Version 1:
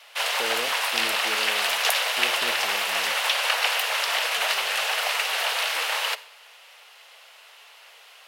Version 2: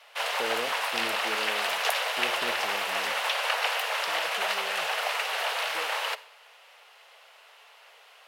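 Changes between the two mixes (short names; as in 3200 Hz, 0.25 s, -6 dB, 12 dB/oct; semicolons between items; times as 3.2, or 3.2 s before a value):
second voice +6.5 dB; master: add high shelf 2100 Hz -8.5 dB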